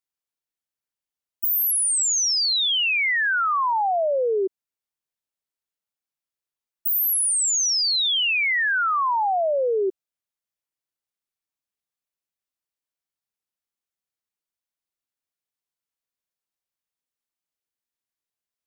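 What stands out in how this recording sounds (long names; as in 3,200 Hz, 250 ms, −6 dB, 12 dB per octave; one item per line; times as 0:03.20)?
background noise floor −91 dBFS
spectral slope −1.0 dB per octave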